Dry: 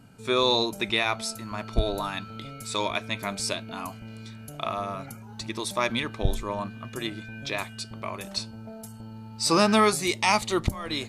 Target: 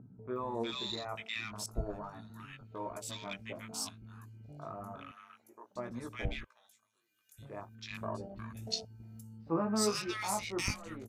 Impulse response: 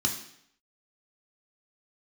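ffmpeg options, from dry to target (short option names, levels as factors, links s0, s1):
-filter_complex "[0:a]flanger=delay=16:depth=4.1:speed=0.34,adynamicequalizer=threshold=0.00501:dfrequency=3700:dqfactor=2.8:tfrequency=3700:tqfactor=2.8:attack=5:release=100:ratio=0.375:range=2.5:mode=cutabove:tftype=bell,flanger=delay=3.8:depth=3:regen=88:speed=1.4:shape=sinusoidal,asettb=1/sr,asplit=3[s0][s1][s2];[s0]atrim=end=6.444[s3];[s1]atrim=start=6.44:end=7.39,asetpts=PTS-STARTPTS,afade=t=in:d=0.004:c=qsin,afade=t=out:st=0.946:d=0.004:c=qsin,aderivative[s4];[s2]atrim=start=7.386[s5];[s3][s4]acrossfade=d=0.004:c1=hsin:c2=qsin[s6];[s6][s5]acrossfade=d=0.004:c1=qsin:c2=hsin,acompressor=mode=upward:threshold=0.00891:ratio=2.5,aexciter=amount=2.1:drive=4.4:freq=5700,afwtdn=0.00708,asettb=1/sr,asplit=3[s7][s8][s9];[s7]atrim=end=5.114[s10];[s8]atrim=start=5.11:end=5.76,asetpts=PTS-STARTPTS,afade=t=in:d=0.004:c=qsin,afade=t=out:st=0.646:d=0.004:c=qsin,highpass=680[s11];[s9]atrim=start=5.756[s12];[s10][s11]acrossfade=d=0.004:c1=hsin:c2=qsin[s13];[s13][s12]acrossfade=d=0.004:c1=qsin:c2=hsin,asettb=1/sr,asplit=3[s14][s15][s16];[s14]atrim=end=8.014[s17];[s15]atrim=start=8.01:end=8.85,asetpts=PTS-STARTPTS,afade=t=in:d=0.004:c=qsin,afade=t=out:st=0.836:d=0.004:c=qsin,acontrast=88[s18];[s16]atrim=start=8.846[s19];[s17][s18]acrossfade=d=0.004:c1=hsin:c2=qsin[s20];[s20][s19]acrossfade=d=0.004:c1=qsin:c2=hsin,acrossover=split=1400[s21][s22];[s22]adelay=360[s23];[s21][s23]amix=inputs=2:normalize=0,volume=0.668"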